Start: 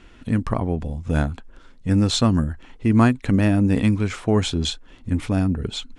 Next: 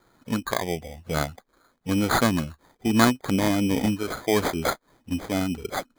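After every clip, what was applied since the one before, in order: high-pass 380 Hz 6 dB/octave; spectral noise reduction 9 dB; sample-and-hold 16×; trim +2 dB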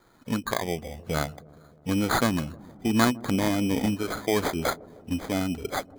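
in parallel at -0.5 dB: compression, threshold -29 dBFS, peak gain reduction 15.5 dB; on the sum: feedback echo behind a low-pass 155 ms, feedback 70%, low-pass 580 Hz, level -19 dB; trim -4.5 dB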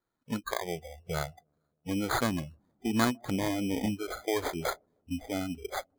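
spectral noise reduction 20 dB; trim -5 dB

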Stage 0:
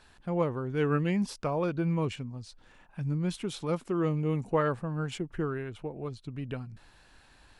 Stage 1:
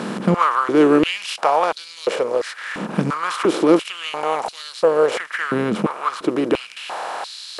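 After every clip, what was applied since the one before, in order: spectral levelling over time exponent 0.4; step-sequenced high-pass 2.9 Hz 210–4200 Hz; trim +6 dB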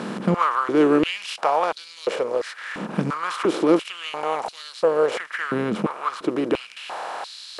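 treble shelf 8.2 kHz -4.5 dB; trim -3.5 dB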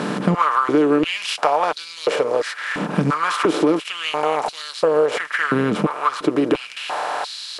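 comb 6.8 ms, depth 37%; compression 5:1, threshold -20 dBFS, peak gain reduction 9.5 dB; trim +6.5 dB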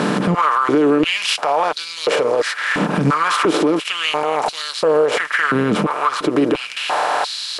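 peak limiter -13.5 dBFS, peak gain reduction 11 dB; trim +6 dB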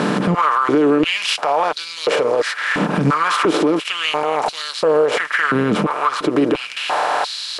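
treble shelf 7.9 kHz -4 dB

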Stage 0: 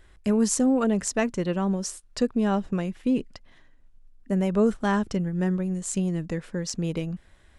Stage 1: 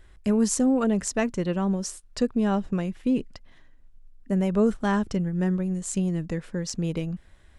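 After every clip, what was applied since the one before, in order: bass shelf 150 Hz +4 dB; trim -1 dB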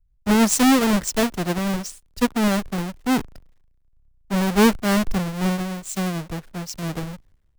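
square wave that keeps the level; three bands expanded up and down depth 100%; trim -1 dB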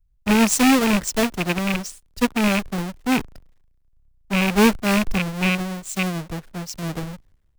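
rattle on loud lows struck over -22 dBFS, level -11 dBFS

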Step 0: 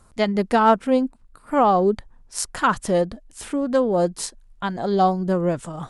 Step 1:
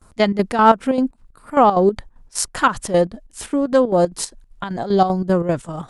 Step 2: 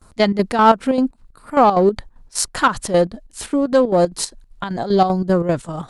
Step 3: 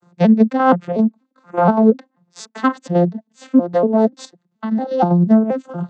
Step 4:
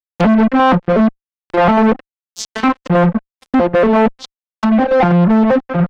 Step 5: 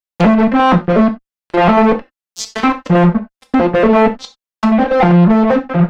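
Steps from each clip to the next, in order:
gate with hold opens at -47 dBFS; square tremolo 5.1 Hz, depth 65%, duty 65%; trim +4.5 dB
in parallel at -10 dB: hard clipper -14.5 dBFS, distortion -8 dB; on the sum: peaking EQ 4.2 kHz +4.5 dB 0.31 oct; trim -1 dB
vocoder on a broken chord major triad, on F3, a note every 239 ms; trim +2 dB
fuzz box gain 24 dB, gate -33 dBFS; low-pass that closes with the level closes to 2.1 kHz, closed at -18.5 dBFS; trim +4.5 dB
gated-style reverb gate 110 ms falling, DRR 5.5 dB; trim +1 dB

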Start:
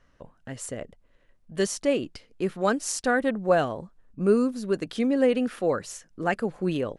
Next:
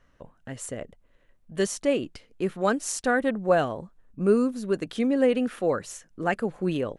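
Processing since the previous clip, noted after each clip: peaking EQ 4.9 kHz -4 dB 0.41 oct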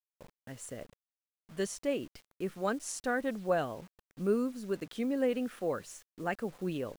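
bit crusher 8-bit; trim -8.5 dB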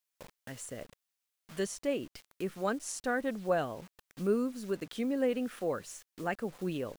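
tape noise reduction on one side only encoder only

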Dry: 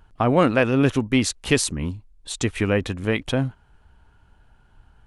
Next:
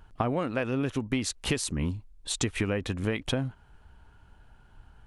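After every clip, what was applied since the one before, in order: compression 16:1, threshold -24 dBFS, peak gain reduction 14 dB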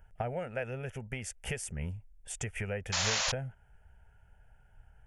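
static phaser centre 1.1 kHz, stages 6; painted sound noise, 2.92–3.32 s, 510–7300 Hz -27 dBFS; trim -4 dB

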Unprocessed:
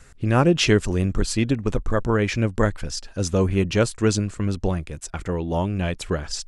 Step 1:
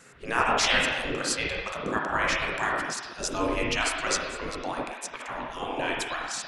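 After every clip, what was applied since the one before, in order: spring tank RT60 1.3 s, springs 31/47/57 ms, chirp 80 ms, DRR -2.5 dB; spectral gate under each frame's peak -15 dB weak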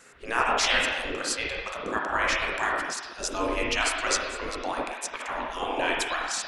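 gain riding within 4 dB 2 s; peaking EQ 140 Hz -10 dB 1.3 oct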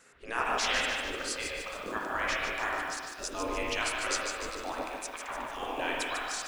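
bit-crushed delay 148 ms, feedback 55%, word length 8-bit, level -5.5 dB; trim -6.5 dB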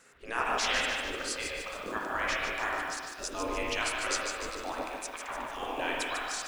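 crackle 120 per s -58 dBFS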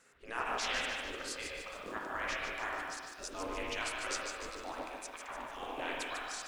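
loudspeaker Doppler distortion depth 0.23 ms; trim -6 dB

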